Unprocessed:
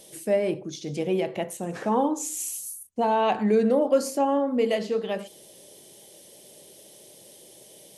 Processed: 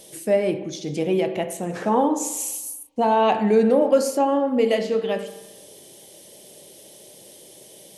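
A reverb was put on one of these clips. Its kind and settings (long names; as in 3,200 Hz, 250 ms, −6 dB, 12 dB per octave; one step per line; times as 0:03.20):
spring reverb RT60 1.1 s, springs 31/45 ms, chirp 35 ms, DRR 10 dB
level +3.5 dB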